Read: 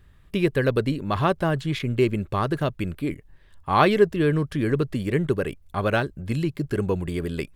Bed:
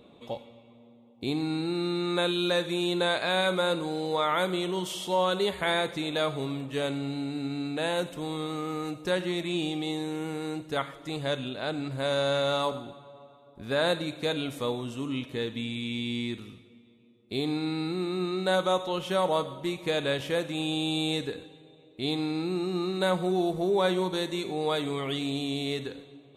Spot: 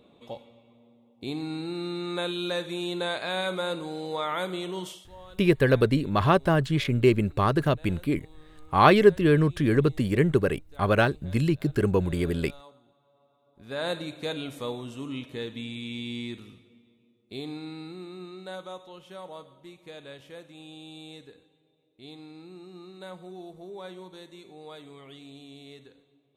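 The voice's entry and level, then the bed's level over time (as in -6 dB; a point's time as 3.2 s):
5.05 s, +1.0 dB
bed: 4.88 s -3.5 dB
5.09 s -22.5 dB
12.8 s -22.5 dB
13.95 s -3 dB
16.76 s -3 dB
18.98 s -16 dB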